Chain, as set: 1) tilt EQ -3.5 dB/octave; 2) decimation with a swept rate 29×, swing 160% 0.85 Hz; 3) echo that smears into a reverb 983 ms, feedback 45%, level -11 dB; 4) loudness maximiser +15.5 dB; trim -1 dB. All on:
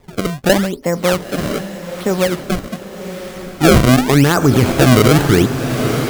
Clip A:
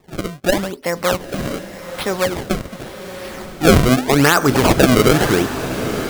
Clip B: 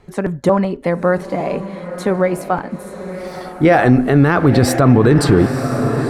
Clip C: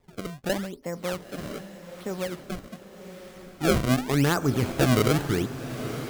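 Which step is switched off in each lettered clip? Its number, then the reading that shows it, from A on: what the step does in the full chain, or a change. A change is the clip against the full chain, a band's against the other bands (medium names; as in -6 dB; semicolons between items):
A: 1, 125 Hz band -4.5 dB; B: 2, 4 kHz band -8.5 dB; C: 4, crest factor change +5.5 dB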